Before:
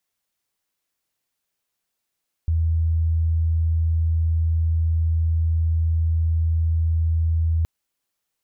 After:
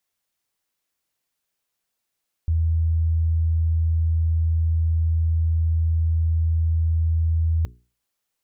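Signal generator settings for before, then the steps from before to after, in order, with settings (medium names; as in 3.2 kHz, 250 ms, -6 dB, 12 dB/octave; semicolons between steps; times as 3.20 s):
tone sine 81.5 Hz -17 dBFS 5.17 s
hum notches 60/120/180/240/300/360/420 Hz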